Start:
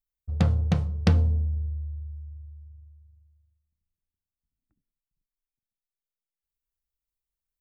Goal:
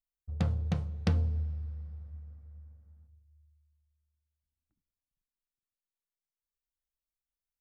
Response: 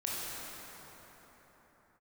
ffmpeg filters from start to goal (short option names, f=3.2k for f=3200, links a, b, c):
-filter_complex "[0:a]asplit=2[a][b];[1:a]atrim=start_sample=2205,asetrate=42777,aresample=44100[c];[b][c]afir=irnorm=-1:irlink=0,volume=-25dB[d];[a][d]amix=inputs=2:normalize=0,volume=-8dB"